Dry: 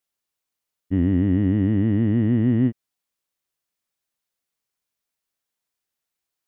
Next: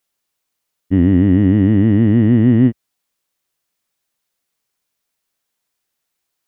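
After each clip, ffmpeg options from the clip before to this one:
-af "equalizer=f=62:t=o:w=0.81:g=-4,volume=8dB"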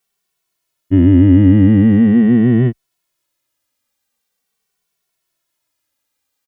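-filter_complex "[0:a]asplit=2[a][b];[b]adelay=2.2,afreqshift=-0.43[c];[a][c]amix=inputs=2:normalize=1,volume=5dB"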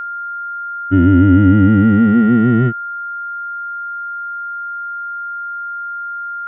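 -af "aeval=exprs='val(0)+0.0891*sin(2*PI*1400*n/s)':c=same,volume=-1dB"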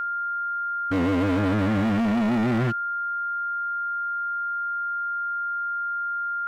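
-af "asoftclip=type=hard:threshold=-18dB,volume=-3dB"

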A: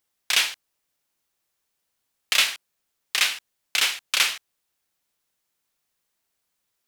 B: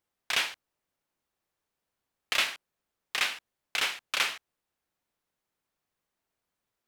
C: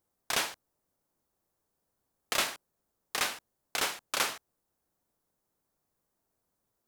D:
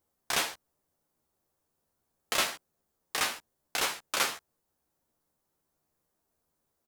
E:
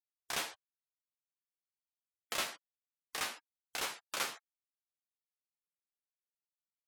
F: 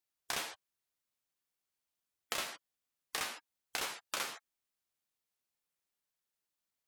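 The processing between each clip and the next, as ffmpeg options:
-af "highshelf=f=2.4k:g=-12"
-af "equalizer=f=2.6k:t=o:w=1.9:g=-13,volume=6.5dB"
-filter_complex "[0:a]asplit=2[a][b];[b]adelay=13,volume=-5dB[c];[a][c]amix=inputs=2:normalize=0"
-af "afftfilt=real='re*gte(hypot(re,im),0.00447)':imag='im*gte(hypot(re,im),0.00447)':win_size=1024:overlap=0.75,volume=-8dB"
-af "acompressor=threshold=-41dB:ratio=6,volume=6.5dB"

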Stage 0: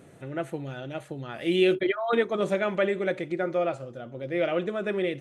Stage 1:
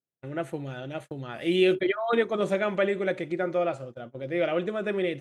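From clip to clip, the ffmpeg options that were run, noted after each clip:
-af "agate=range=-47dB:threshold=-39dB:ratio=16:detection=peak"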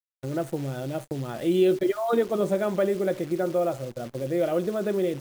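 -filter_complex "[0:a]equalizer=f=2.3k:w=0.88:g=-13.5,asplit=2[a][b];[b]acompressor=threshold=-35dB:ratio=6,volume=2.5dB[c];[a][c]amix=inputs=2:normalize=0,acrusher=bits=8:dc=4:mix=0:aa=0.000001"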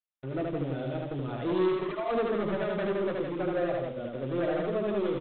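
-af "aresample=8000,asoftclip=type=hard:threshold=-24.5dB,aresample=44100,flanger=delay=3.4:depth=5.4:regen=-47:speed=0.5:shape=triangular,aecho=1:1:75.8|166.2:0.794|0.562"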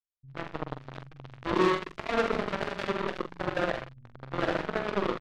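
-filter_complex "[0:a]acrossover=split=120[a][b];[a]alimiter=level_in=23.5dB:limit=-24dB:level=0:latency=1,volume=-23.5dB[c];[b]acrusher=bits=3:mix=0:aa=0.5[d];[c][d]amix=inputs=2:normalize=0,asplit=2[e][f];[f]adelay=45,volume=-8dB[g];[e][g]amix=inputs=2:normalize=0,volume=1.5dB"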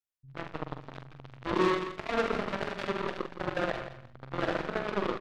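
-af "aecho=1:1:167|334:0.251|0.0427,volume=-2dB"

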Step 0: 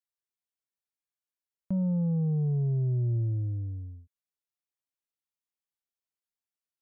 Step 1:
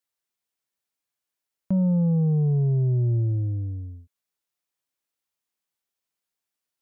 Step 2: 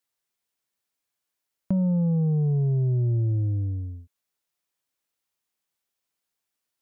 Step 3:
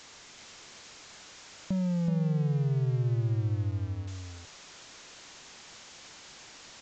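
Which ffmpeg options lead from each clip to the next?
-af "lowshelf=f=87:g=-6.5,volume=7.5dB"
-af "acompressor=threshold=-24dB:ratio=4,volume=2.5dB"
-af "aeval=exprs='val(0)+0.5*0.0266*sgn(val(0))':c=same,aresample=16000,aresample=44100,aecho=1:1:376:0.562,volume=-7.5dB"

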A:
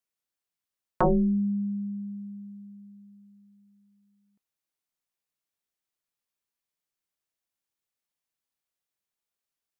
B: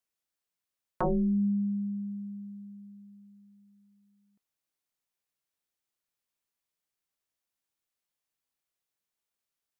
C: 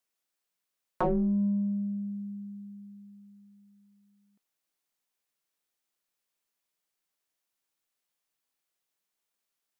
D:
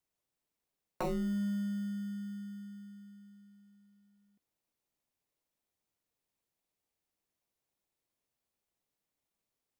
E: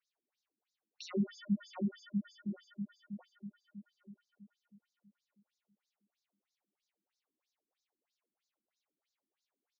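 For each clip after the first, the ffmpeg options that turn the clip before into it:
-af "alimiter=limit=-23dB:level=0:latency=1"
-filter_complex "[0:a]equalizer=f=61:t=o:w=1.7:g=-12.5,asplit=2[a][b];[b]asoftclip=type=tanh:threshold=-30.5dB,volume=-6.5dB[c];[a][c]amix=inputs=2:normalize=0"
-filter_complex "[0:a]asplit=2[a][b];[b]acrusher=samples=27:mix=1:aa=0.000001,volume=-6dB[c];[a][c]amix=inputs=2:normalize=0,acompressor=threshold=-34dB:ratio=1.5,volume=-5.5dB"
-filter_complex "[0:a]asplit=2[a][b];[b]adelay=728,lowpass=f=4.9k:p=1,volume=-13dB,asplit=2[c][d];[d]adelay=728,lowpass=f=4.9k:p=1,volume=0.42,asplit=2[e][f];[f]adelay=728,lowpass=f=4.9k:p=1,volume=0.42,asplit=2[g][h];[h]adelay=728,lowpass=f=4.9k:p=1,volume=0.42[i];[a][c][e][g][i]amix=inputs=5:normalize=0,afftfilt=real='re*between(b*sr/1024,240*pow(5200/240,0.5+0.5*sin(2*PI*3.1*pts/sr))/1.41,240*pow(5200/240,0.5+0.5*sin(2*PI*3.1*pts/sr))*1.41)':imag='im*between(b*sr/1024,240*pow(5200/240,0.5+0.5*sin(2*PI*3.1*pts/sr))/1.41,240*pow(5200/240,0.5+0.5*sin(2*PI*3.1*pts/sr))*1.41)':win_size=1024:overlap=0.75,volume=7.5dB"

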